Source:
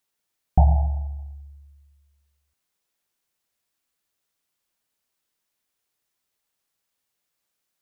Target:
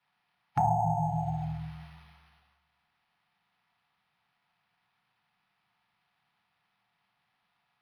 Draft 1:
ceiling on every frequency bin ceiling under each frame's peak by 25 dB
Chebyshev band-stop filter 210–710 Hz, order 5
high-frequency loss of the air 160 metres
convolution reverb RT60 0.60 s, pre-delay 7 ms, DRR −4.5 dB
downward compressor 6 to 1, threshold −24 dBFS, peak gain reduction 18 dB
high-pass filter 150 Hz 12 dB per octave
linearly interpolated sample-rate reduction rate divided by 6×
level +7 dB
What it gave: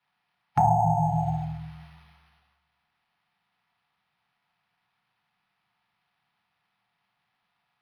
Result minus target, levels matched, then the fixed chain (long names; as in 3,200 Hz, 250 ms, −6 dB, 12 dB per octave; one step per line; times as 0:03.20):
downward compressor: peak gain reduction −5.5 dB
ceiling on every frequency bin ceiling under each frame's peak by 25 dB
Chebyshev band-stop filter 210–710 Hz, order 5
high-frequency loss of the air 160 metres
convolution reverb RT60 0.60 s, pre-delay 7 ms, DRR −4.5 dB
downward compressor 6 to 1, threshold −30.5 dBFS, peak gain reduction 23.5 dB
high-pass filter 150 Hz 12 dB per octave
linearly interpolated sample-rate reduction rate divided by 6×
level +7 dB